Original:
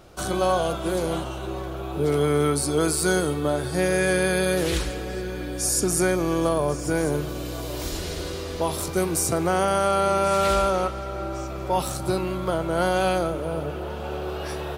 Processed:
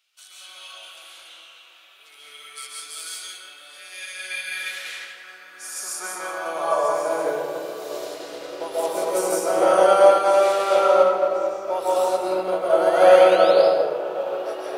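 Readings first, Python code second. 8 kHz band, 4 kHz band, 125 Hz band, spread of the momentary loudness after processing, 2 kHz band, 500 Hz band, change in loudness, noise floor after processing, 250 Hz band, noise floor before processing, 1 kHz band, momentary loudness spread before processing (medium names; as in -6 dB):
-5.5 dB, -0.5 dB, under -20 dB, 21 LU, -0.5 dB, +5.5 dB, +5.0 dB, -49 dBFS, -8.0 dB, -32 dBFS, +3.5 dB, 10 LU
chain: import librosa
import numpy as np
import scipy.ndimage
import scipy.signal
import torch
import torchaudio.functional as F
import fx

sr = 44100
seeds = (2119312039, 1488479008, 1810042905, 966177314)

p1 = fx.filter_sweep_highpass(x, sr, from_hz=2700.0, to_hz=510.0, start_s=4.02, end_s=7.42, q=2.1)
p2 = fx.spec_paint(p1, sr, seeds[0], shape='rise', start_s=12.82, length_s=0.69, low_hz=1500.0, high_hz=5200.0, level_db=-35.0)
p3 = p2 + fx.echo_single(p2, sr, ms=171, db=-11.5, dry=0)
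p4 = fx.rev_freeverb(p3, sr, rt60_s=2.8, hf_ratio=0.4, predelay_ms=100, drr_db=-7.5)
p5 = fx.upward_expand(p4, sr, threshold_db=-28.0, expansion=1.5)
y = p5 * 10.0 ** (-3.0 / 20.0)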